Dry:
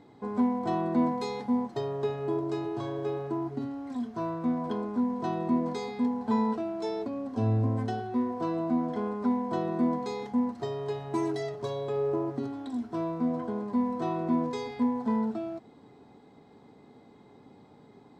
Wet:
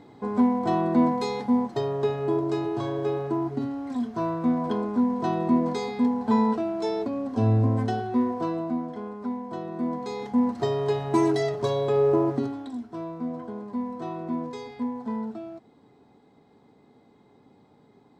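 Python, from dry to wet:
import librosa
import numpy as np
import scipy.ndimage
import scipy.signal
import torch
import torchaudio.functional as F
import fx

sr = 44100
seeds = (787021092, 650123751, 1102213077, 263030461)

y = fx.gain(x, sr, db=fx.line((8.28, 5.0), (8.97, -4.0), (9.7, -4.0), (10.63, 8.0), (12.32, 8.0), (12.85, -3.0)))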